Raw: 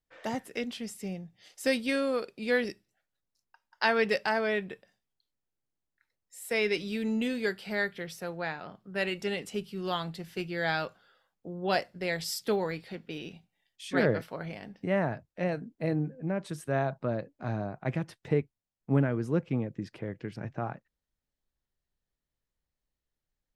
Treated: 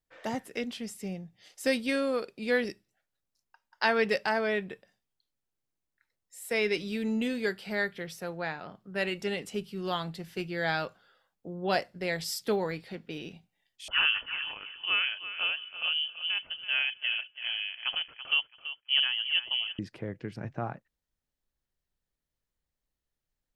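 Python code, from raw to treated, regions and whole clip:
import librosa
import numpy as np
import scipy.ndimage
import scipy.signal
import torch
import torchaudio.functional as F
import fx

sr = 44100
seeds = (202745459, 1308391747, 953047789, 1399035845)

y = fx.chain(x, sr, fx.low_shelf(hz=86.0, db=-9.5),
    fx.echo_feedback(ms=333, feedback_pct=20, wet_db=-12),
    fx.freq_invert(carrier_hz=3200), at=(13.88, 19.79))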